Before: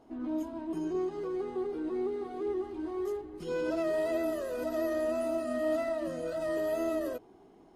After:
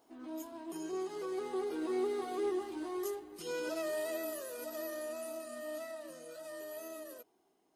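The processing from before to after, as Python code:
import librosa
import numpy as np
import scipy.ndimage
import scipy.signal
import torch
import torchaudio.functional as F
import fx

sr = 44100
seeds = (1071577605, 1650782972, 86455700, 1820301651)

y = fx.doppler_pass(x, sr, speed_mps=6, closest_m=4.5, pass_at_s=2.16)
y = fx.riaa(y, sr, side='recording')
y = F.gain(torch.from_numpy(y), 3.5).numpy()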